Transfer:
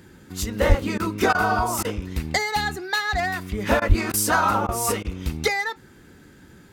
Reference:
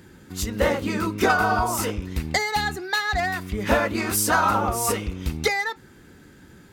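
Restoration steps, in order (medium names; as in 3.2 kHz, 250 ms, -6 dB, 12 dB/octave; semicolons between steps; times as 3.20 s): de-plosive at 0.68/3.88 s; interpolate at 0.98/1.33/1.83/3.80/4.12/4.67/5.03 s, 16 ms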